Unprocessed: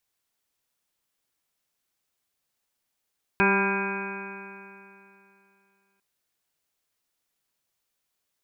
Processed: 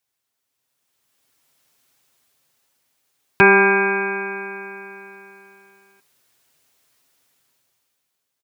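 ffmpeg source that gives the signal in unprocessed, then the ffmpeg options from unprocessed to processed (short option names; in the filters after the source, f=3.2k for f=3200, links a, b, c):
-f lavfi -i "aevalsrc='0.0631*pow(10,-3*t/2.83)*sin(2*PI*195.09*t)+0.0668*pow(10,-3*t/2.83)*sin(2*PI*390.71*t)+0.0141*pow(10,-3*t/2.83)*sin(2*PI*587.39*t)+0.0316*pow(10,-3*t/2.83)*sin(2*PI*785.66*t)+0.0562*pow(10,-3*t/2.83)*sin(2*PI*986.03*t)+0.0188*pow(10,-3*t/2.83)*sin(2*PI*1189.01*t)+0.0398*pow(10,-3*t/2.83)*sin(2*PI*1395.1*t)+0.0668*pow(10,-3*t/2.83)*sin(2*PI*1604.78*t)+0.00668*pow(10,-3*t/2.83)*sin(2*PI*1818.53*t)+0.00944*pow(10,-3*t/2.83)*sin(2*PI*2036.79*t)+0.0299*pow(10,-3*t/2.83)*sin(2*PI*2260.01*t)+0.0596*pow(10,-3*t/2.83)*sin(2*PI*2488.6*t)':d=2.6:s=44100"
-af "highpass=f=52:w=0.5412,highpass=f=52:w=1.3066,aecho=1:1:7.5:0.45,dynaudnorm=f=250:g=9:m=15dB"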